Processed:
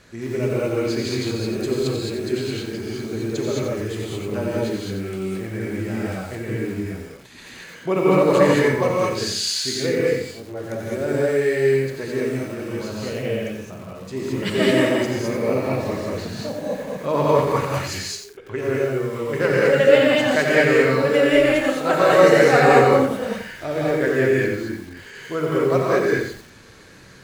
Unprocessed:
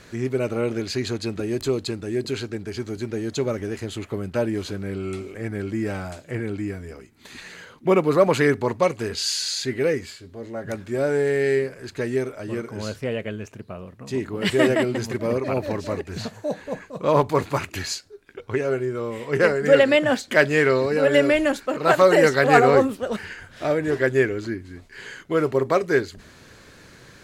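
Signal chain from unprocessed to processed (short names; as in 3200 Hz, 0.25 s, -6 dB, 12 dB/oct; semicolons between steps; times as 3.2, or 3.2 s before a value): non-linear reverb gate 0.24 s rising, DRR -4.5 dB; lo-fi delay 89 ms, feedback 35%, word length 6-bit, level -7 dB; gain -4.5 dB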